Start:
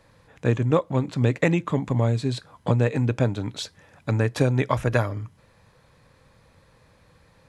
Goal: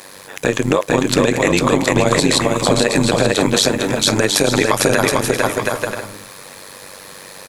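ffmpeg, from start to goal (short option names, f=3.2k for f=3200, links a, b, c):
-filter_complex "[0:a]highpass=260,aemphasis=mode=production:type=75fm,acompressor=threshold=-33dB:ratio=2,tremolo=f=96:d=0.857,asplit=2[a][b];[b]aecho=0:1:450|720|882|979.2|1038:0.631|0.398|0.251|0.158|0.1[c];[a][c]amix=inputs=2:normalize=0,alimiter=level_in=23.5dB:limit=-1dB:release=50:level=0:latency=1,volume=-1dB"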